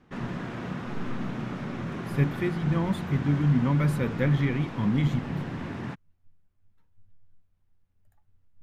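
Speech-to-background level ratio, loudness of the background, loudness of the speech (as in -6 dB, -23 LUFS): 8.5 dB, -35.0 LUFS, -26.5 LUFS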